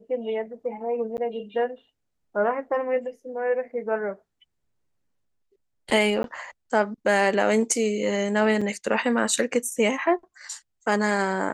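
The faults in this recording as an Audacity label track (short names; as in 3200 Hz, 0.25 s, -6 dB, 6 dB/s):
1.170000	1.180000	gap 9.4 ms
6.230000	6.240000	gap
8.610000	8.620000	gap 5.3 ms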